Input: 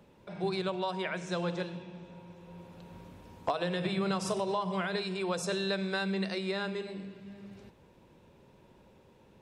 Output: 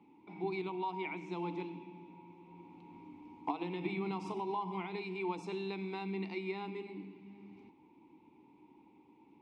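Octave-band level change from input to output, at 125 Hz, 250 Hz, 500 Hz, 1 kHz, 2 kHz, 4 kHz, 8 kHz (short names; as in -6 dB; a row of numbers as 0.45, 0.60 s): -7.5 dB, -5.0 dB, -6.5 dB, -3.5 dB, -8.5 dB, -13.5 dB, under -20 dB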